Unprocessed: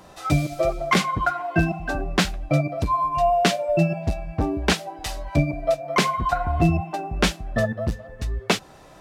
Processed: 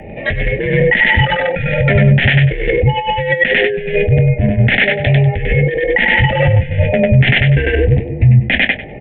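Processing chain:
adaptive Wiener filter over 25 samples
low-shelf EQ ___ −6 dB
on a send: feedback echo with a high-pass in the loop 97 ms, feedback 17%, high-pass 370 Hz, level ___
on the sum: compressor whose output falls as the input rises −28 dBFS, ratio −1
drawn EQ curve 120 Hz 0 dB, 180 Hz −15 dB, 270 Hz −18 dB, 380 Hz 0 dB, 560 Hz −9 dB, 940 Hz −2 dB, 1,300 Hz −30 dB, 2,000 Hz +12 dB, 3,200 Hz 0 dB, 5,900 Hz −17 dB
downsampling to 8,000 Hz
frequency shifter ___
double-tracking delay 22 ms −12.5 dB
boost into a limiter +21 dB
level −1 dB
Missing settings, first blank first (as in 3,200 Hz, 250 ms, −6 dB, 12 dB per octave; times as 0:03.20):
82 Hz, −3 dB, −180 Hz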